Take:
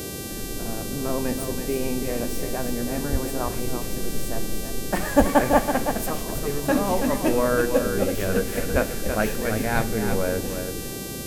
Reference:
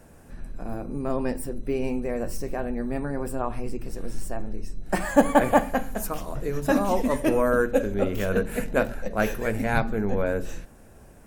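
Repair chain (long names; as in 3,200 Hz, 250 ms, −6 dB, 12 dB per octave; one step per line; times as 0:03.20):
hum removal 390.6 Hz, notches 37
high-pass at the plosives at 0:03.11/0:05.18/0:08.72
noise reduction from a noise print 7 dB
echo removal 329 ms −7.5 dB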